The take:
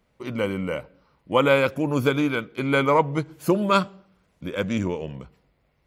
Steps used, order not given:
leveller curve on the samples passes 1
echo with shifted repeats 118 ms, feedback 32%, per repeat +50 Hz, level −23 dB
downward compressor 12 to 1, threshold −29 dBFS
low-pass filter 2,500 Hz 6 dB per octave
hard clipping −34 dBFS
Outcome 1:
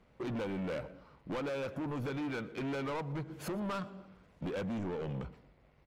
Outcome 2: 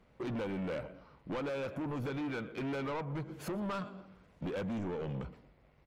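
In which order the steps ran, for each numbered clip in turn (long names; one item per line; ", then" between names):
downward compressor, then hard clipping, then low-pass filter, then leveller curve on the samples, then echo with shifted repeats
downward compressor, then echo with shifted repeats, then hard clipping, then leveller curve on the samples, then low-pass filter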